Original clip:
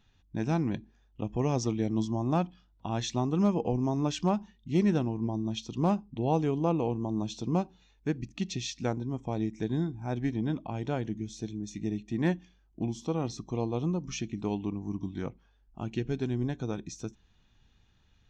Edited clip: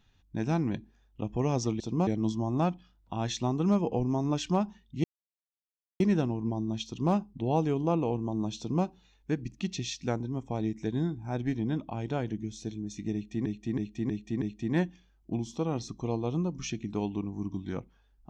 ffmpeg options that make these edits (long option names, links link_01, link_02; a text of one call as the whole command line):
ffmpeg -i in.wav -filter_complex "[0:a]asplit=8[link_01][link_02][link_03][link_04][link_05][link_06][link_07][link_08];[link_01]atrim=end=1.802[link_09];[link_02]atrim=start=7.348:end=7.622[link_10];[link_03]atrim=start=1.798:end=4.77,asetpts=PTS-STARTPTS,afade=type=out:start_time=2.968:duration=0.004:curve=hsin,apad=pad_dur=0.96[link_11];[link_04]atrim=start=4.77:end=12.232,asetpts=PTS-STARTPTS,afade=type=in:duration=0.004:curve=hsin[link_12];[link_05]atrim=start=11.908:end=12.232[link_13];[link_06]atrim=start=11.908:end=12.232[link_14];[link_07]atrim=start=11.908:end=12.232[link_15];[link_08]atrim=start=11.908[link_16];[link_09][link_10]acrossfade=duration=0.004:curve1=hsin:curve2=hsin[link_17];[link_11][link_12]concat=n=2:v=0:a=1[link_18];[link_17][link_18]acrossfade=duration=0.004:curve1=hsin:curve2=hsin[link_19];[link_19][link_13]acrossfade=duration=0.004:curve1=hsin:curve2=hsin[link_20];[link_20][link_14]acrossfade=duration=0.004:curve1=hsin:curve2=hsin[link_21];[link_21][link_15]acrossfade=duration=0.004:curve1=hsin:curve2=hsin[link_22];[link_22][link_16]acrossfade=duration=0.004:curve1=hsin:curve2=hsin" out.wav